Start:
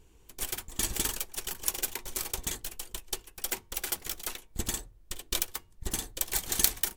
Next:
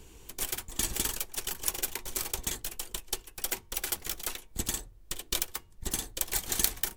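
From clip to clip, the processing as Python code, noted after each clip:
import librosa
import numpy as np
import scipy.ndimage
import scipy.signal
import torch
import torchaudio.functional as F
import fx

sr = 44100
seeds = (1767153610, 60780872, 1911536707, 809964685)

y = fx.band_squash(x, sr, depth_pct=40)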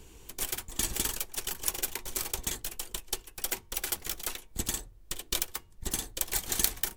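y = x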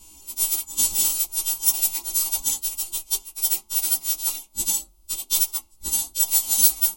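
y = fx.freq_snap(x, sr, grid_st=2)
y = fx.fixed_phaser(y, sr, hz=460.0, stages=6)
y = fx.chorus_voices(y, sr, voices=2, hz=1.2, base_ms=14, depth_ms=3.8, mix_pct=45)
y = F.gain(torch.from_numpy(y), 5.0).numpy()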